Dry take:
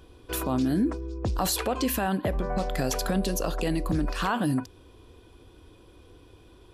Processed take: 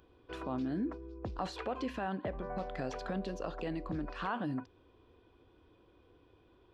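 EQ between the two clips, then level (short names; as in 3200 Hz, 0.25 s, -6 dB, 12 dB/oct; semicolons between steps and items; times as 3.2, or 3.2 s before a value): tape spacing loss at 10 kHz 41 dB; tilt +2.5 dB/oct; -4.5 dB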